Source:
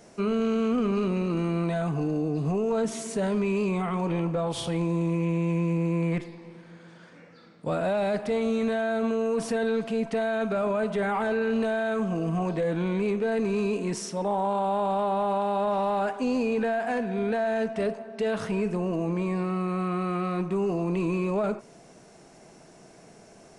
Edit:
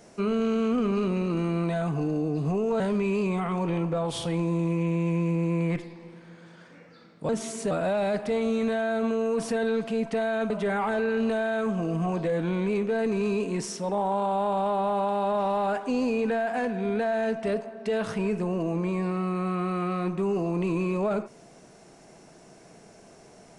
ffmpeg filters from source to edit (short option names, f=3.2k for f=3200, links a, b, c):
-filter_complex "[0:a]asplit=5[a][b][c][d][e];[a]atrim=end=2.802[f];[b]atrim=start=3.218:end=7.712[g];[c]atrim=start=2.798:end=3.222[h];[d]atrim=start=7.708:end=10.502[i];[e]atrim=start=10.828[j];[f][g]acrossfade=d=0.004:c1=hsin:c2=hsin[k];[k][h]acrossfade=d=0.004:c1=hsin:c2=hsin[l];[l][i]acrossfade=d=0.004:c1=hsin:c2=hsin[m];[m][j]acrossfade=d=0.004:c1=hsin:c2=hsin"